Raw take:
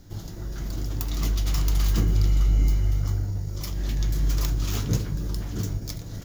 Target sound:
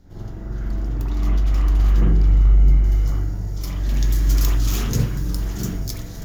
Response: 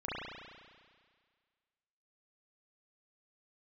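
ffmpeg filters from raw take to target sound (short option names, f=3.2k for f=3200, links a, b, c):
-filter_complex "[0:a]asetnsamples=n=441:p=0,asendcmd='2.84 highshelf g 4;3.94 highshelf g 11',highshelf=f=3.4k:g=-9.5[a];[1:a]atrim=start_sample=2205,atrim=end_sample=3969,asetrate=33516,aresample=44100[b];[a][b]afir=irnorm=-1:irlink=0"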